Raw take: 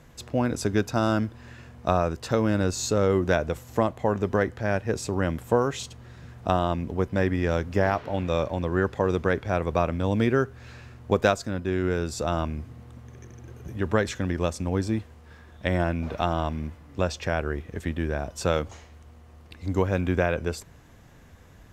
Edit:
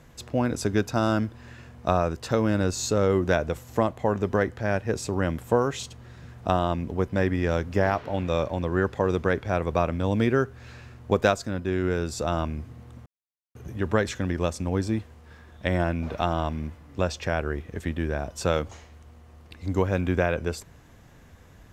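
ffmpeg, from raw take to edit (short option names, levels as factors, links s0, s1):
-filter_complex "[0:a]asplit=3[s0][s1][s2];[s0]atrim=end=13.06,asetpts=PTS-STARTPTS,afade=t=out:st=13.056:d=0.004:c=hsin[s3];[s1]atrim=start=13.06:end=13.55,asetpts=PTS-STARTPTS,volume=0[s4];[s2]atrim=start=13.55,asetpts=PTS-STARTPTS,afade=t=in:d=0.004:c=hsin[s5];[s3][s4][s5]concat=n=3:v=0:a=1"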